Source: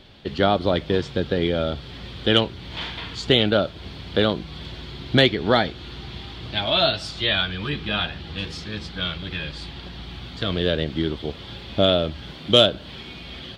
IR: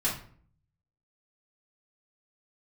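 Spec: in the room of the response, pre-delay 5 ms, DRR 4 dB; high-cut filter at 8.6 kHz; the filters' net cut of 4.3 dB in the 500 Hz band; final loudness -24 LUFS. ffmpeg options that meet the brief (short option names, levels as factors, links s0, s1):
-filter_complex "[0:a]lowpass=8600,equalizer=f=500:t=o:g=-5.5,asplit=2[s0][s1];[1:a]atrim=start_sample=2205,adelay=5[s2];[s1][s2]afir=irnorm=-1:irlink=0,volume=0.251[s3];[s0][s3]amix=inputs=2:normalize=0,volume=0.841"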